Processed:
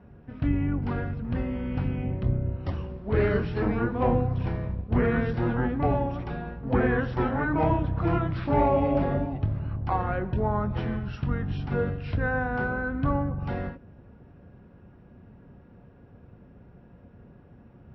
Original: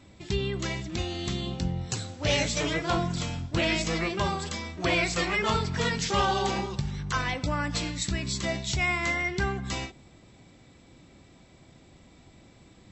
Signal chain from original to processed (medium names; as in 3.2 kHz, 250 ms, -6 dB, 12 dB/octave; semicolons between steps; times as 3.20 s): octave divider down 2 oct, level 0 dB; low-pass 1.4 kHz 12 dB/octave; tape speed -28%; high-pass 61 Hz; trim +4 dB